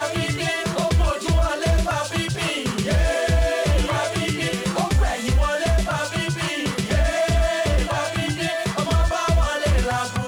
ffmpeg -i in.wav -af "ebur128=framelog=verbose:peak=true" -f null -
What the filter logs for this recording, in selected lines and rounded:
Integrated loudness:
  I:         -21.8 LUFS
  Threshold: -31.8 LUFS
Loudness range:
  LRA:         0.8 LU
  Threshold: -41.8 LUFS
  LRA low:   -22.3 LUFS
  LRA high:  -21.4 LUFS
True peak:
  Peak:      -10.4 dBFS